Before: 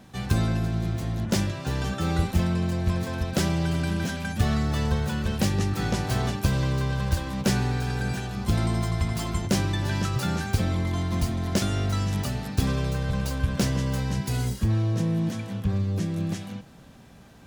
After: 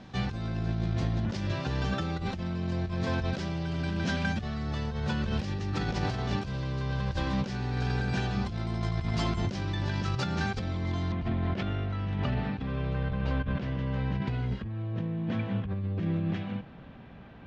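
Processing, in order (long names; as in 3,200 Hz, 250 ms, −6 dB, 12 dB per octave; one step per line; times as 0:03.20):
low-pass filter 5,400 Hz 24 dB per octave, from 0:11.12 3,100 Hz
compressor whose output falls as the input rises −29 dBFS, ratio −1
level −1.5 dB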